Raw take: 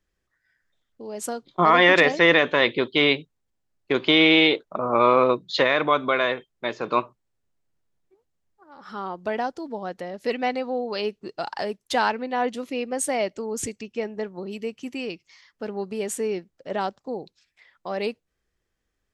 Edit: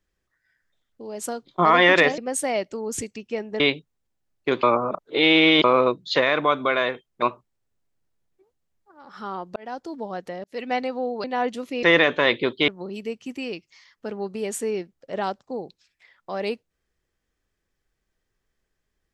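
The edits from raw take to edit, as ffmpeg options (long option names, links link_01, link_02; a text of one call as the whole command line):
ffmpeg -i in.wav -filter_complex "[0:a]asplit=11[link_01][link_02][link_03][link_04][link_05][link_06][link_07][link_08][link_09][link_10][link_11];[link_01]atrim=end=2.182[link_12];[link_02]atrim=start=12.828:end=14.252[link_13];[link_03]atrim=start=3.028:end=4.062[link_14];[link_04]atrim=start=4.058:end=5.072,asetpts=PTS-STARTPTS,areverse[link_15];[link_05]atrim=start=5.068:end=6.652[link_16];[link_06]atrim=start=6.938:end=9.28,asetpts=PTS-STARTPTS,afade=type=out:start_time=2.338:duration=0.004:curve=hsin[link_17];[link_07]atrim=start=9.28:end=10.16,asetpts=PTS-STARTPTS,afade=type=in:duration=0.33,afade=type=out:start_time=0.876:duration=0.004:curve=hsin[link_18];[link_08]atrim=start=10.16:end=10.962,asetpts=PTS-STARTPTS,afade=type=in:duration=0.29[link_19];[link_09]atrim=start=12.238:end=12.832[link_20];[link_10]atrim=start=2.178:end=3.032[link_21];[link_11]atrim=start=14.248[link_22];[link_12][link_13]acrossfade=duration=0.004:curve1=hsin:curve2=hsin[link_23];[link_23][link_14]acrossfade=duration=0.004:curve1=hsin:curve2=hsin[link_24];[link_24][link_15]acrossfade=duration=0.004:curve1=hsin:curve2=hsin[link_25];[link_25][link_16]acrossfade=duration=0.004:curve1=hsin:curve2=hsin[link_26];[link_17][link_18][link_19]concat=n=3:v=0:a=1[link_27];[link_26][link_27]acrossfade=duration=0.004:curve1=hsin:curve2=hsin[link_28];[link_28][link_20]acrossfade=duration=0.004:curve1=hsin:curve2=hsin[link_29];[link_29][link_21]acrossfade=duration=0.004:curve1=hsin:curve2=hsin[link_30];[link_30][link_22]acrossfade=duration=0.004:curve1=hsin:curve2=hsin" out.wav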